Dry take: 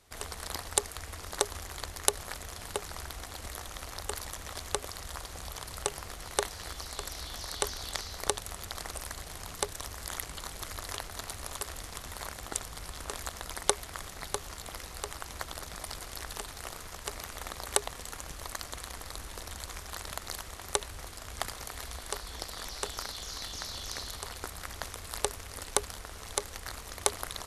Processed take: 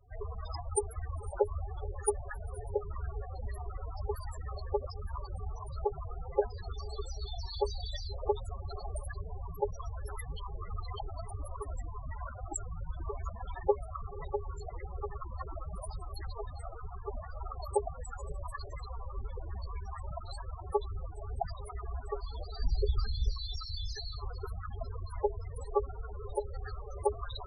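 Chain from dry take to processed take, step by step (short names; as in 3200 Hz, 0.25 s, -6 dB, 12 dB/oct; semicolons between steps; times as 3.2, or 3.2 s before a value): 22.6–23.32 low shelf 230 Hz +12 dB; diffused feedback echo 0.521 s, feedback 79%, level -15.5 dB; loudest bins only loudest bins 8; gain +7 dB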